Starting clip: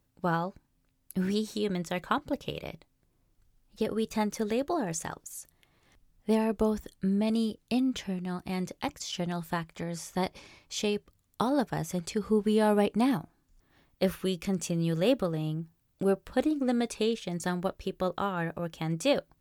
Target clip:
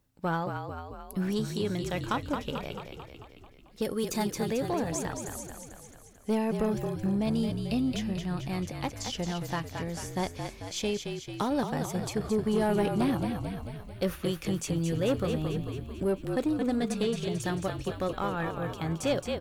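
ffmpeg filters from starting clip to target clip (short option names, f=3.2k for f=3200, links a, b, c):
-filter_complex "[0:a]asettb=1/sr,asplit=3[a][b][c];[a]atrim=end=3.824[d];[b]atrim=start=3.82:end=4.29,asetpts=PTS-STARTPTS,afade=t=in:d=0.004:c=qsin,afade=t=out:st=0.466:d=0.004:c=qsin,bass=f=250:g=0,treble=f=4k:g=10[e];[c]atrim=start=4.286[f];[d][e]acrossfade=d=0.004:c1=hsin:c2=qsin[g];[g][f]acrossfade=d=0.004:c1=qsin:c2=hsin,asplit=9[h][i][j][k][l][m][n][o][p];[i]adelay=221,afreqshift=-41,volume=-7dB[q];[j]adelay=442,afreqshift=-82,volume=-11.4dB[r];[k]adelay=663,afreqshift=-123,volume=-15.9dB[s];[l]adelay=884,afreqshift=-164,volume=-20.3dB[t];[m]adelay=1105,afreqshift=-205,volume=-24.7dB[u];[n]adelay=1326,afreqshift=-246,volume=-29.2dB[v];[o]adelay=1547,afreqshift=-287,volume=-33.6dB[w];[p]adelay=1768,afreqshift=-328,volume=-38.1dB[x];[h][q][r][s][t][u][v][w][x]amix=inputs=9:normalize=0,asoftclip=type=tanh:threshold=-19.5dB"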